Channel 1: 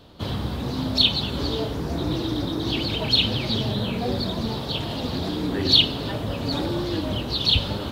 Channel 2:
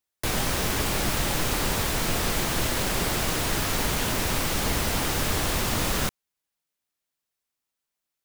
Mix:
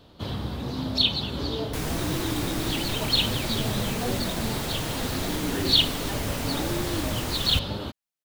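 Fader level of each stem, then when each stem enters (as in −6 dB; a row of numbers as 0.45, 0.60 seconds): −3.5, −6.5 decibels; 0.00, 1.50 seconds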